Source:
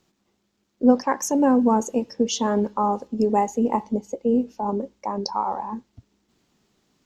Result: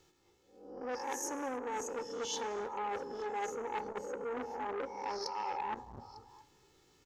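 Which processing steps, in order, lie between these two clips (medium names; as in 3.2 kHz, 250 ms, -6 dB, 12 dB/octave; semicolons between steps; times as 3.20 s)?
reverse spectral sustain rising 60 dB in 0.46 s; comb 2.3 ms, depth 81%; reverse; compression 16:1, threshold -30 dBFS, peak gain reduction 20.5 dB; reverse; repeats whose band climbs or falls 225 ms, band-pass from 210 Hz, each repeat 1.4 oct, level -10 dB; on a send at -14 dB: reverberation, pre-delay 3 ms; on the sum: transformer saturation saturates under 1.8 kHz; trim -3 dB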